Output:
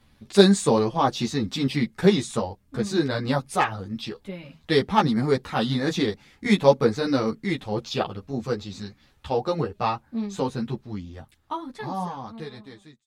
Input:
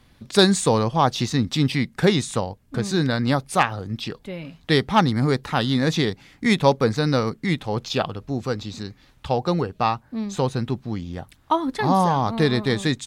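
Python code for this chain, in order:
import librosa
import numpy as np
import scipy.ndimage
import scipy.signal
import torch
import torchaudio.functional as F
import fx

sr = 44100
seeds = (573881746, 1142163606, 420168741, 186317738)

y = fx.fade_out_tail(x, sr, length_s=2.84)
y = fx.dynamic_eq(y, sr, hz=380.0, q=0.84, threshold_db=-28.0, ratio=4.0, max_db=4)
y = fx.ensemble(y, sr)
y = y * librosa.db_to_amplitude(-1.0)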